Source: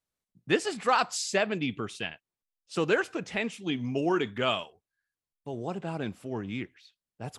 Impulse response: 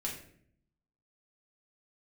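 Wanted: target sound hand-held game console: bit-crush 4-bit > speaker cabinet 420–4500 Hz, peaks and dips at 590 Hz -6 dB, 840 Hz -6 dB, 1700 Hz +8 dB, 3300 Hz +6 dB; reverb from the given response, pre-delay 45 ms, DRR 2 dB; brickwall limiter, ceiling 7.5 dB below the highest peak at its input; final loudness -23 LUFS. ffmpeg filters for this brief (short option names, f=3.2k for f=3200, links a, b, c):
-filter_complex "[0:a]alimiter=limit=-19.5dB:level=0:latency=1,asplit=2[a][b];[1:a]atrim=start_sample=2205,adelay=45[c];[b][c]afir=irnorm=-1:irlink=0,volume=-4dB[d];[a][d]amix=inputs=2:normalize=0,acrusher=bits=3:mix=0:aa=0.000001,highpass=420,equalizer=f=590:t=q:w=4:g=-6,equalizer=f=840:t=q:w=4:g=-6,equalizer=f=1.7k:t=q:w=4:g=8,equalizer=f=3.3k:t=q:w=4:g=6,lowpass=f=4.5k:w=0.5412,lowpass=f=4.5k:w=1.3066,volume=7dB"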